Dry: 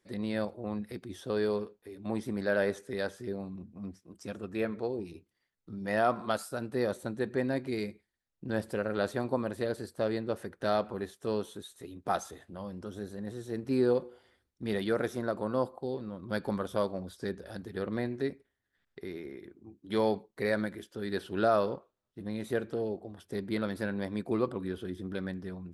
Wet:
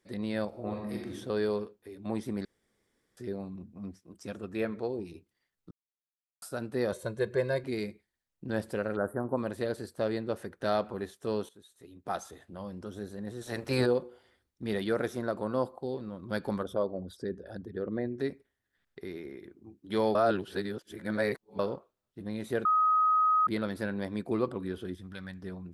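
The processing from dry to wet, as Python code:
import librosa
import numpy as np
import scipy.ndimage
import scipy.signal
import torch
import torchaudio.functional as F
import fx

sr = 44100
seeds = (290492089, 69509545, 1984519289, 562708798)

y = fx.reverb_throw(x, sr, start_s=0.48, length_s=0.64, rt60_s=0.87, drr_db=-1.0)
y = fx.comb(y, sr, ms=1.9, depth=0.84, at=(6.92, 7.64))
y = fx.ellip_bandstop(y, sr, low_hz=1500.0, high_hz=9700.0, order=3, stop_db=40, at=(8.95, 9.36), fade=0.02)
y = fx.spec_clip(y, sr, under_db=19, at=(13.41, 13.85), fade=0.02)
y = fx.envelope_sharpen(y, sr, power=1.5, at=(16.62, 18.18), fade=0.02)
y = fx.peak_eq(y, sr, hz=380.0, db=-14.5, octaves=1.7, at=(24.95, 25.42))
y = fx.edit(y, sr, fx.room_tone_fill(start_s=2.45, length_s=0.72),
    fx.silence(start_s=5.71, length_s=0.71),
    fx.fade_in_from(start_s=11.49, length_s=1.11, floor_db=-15.5),
    fx.reverse_span(start_s=20.15, length_s=1.44),
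    fx.bleep(start_s=22.65, length_s=0.82, hz=1260.0, db=-21.5), tone=tone)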